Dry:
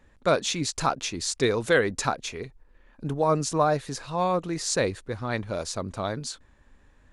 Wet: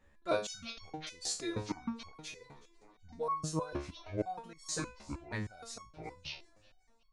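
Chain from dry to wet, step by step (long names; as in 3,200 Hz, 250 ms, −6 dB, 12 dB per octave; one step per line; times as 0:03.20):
pitch shifter gated in a rhythm −9 semitones, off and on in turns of 532 ms
feedback echo with a high-pass in the loop 374 ms, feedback 58%, high-pass 180 Hz, level −23.5 dB
step-sequenced resonator 6.4 Hz 71–1,100 Hz
level +1 dB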